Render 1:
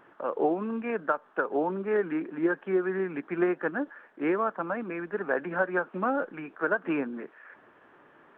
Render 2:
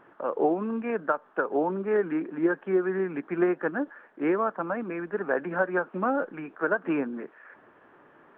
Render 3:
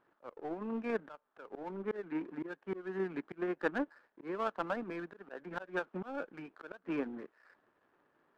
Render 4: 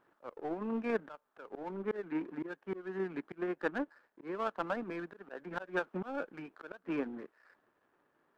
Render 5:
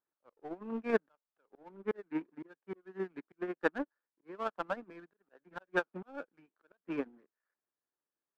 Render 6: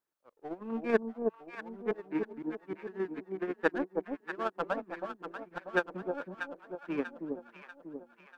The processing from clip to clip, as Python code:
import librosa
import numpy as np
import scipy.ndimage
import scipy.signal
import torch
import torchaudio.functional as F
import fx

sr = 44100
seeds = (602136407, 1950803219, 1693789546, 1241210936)

y1 = fx.high_shelf(x, sr, hz=2900.0, db=-8.5)
y1 = F.gain(torch.from_numpy(y1), 2.0).numpy()
y2 = fx.power_curve(y1, sr, exponent=1.4)
y2 = fx.auto_swell(y2, sr, attack_ms=349.0)
y2 = F.gain(torch.from_numpy(y2), -1.0).numpy()
y3 = fx.rider(y2, sr, range_db=4, speed_s=2.0)
y4 = fx.upward_expand(y3, sr, threshold_db=-49.0, expansion=2.5)
y4 = F.gain(torch.from_numpy(y4), 5.5).numpy()
y5 = fx.echo_alternate(y4, sr, ms=320, hz=860.0, feedback_pct=69, wet_db=-4)
y5 = F.gain(torch.from_numpy(y5), 2.5).numpy()